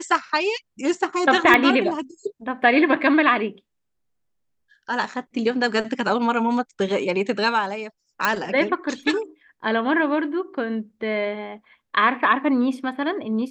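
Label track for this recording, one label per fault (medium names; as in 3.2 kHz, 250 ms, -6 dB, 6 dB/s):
1.540000	1.540000	pop -5 dBFS
8.250000	8.250000	pop -6 dBFS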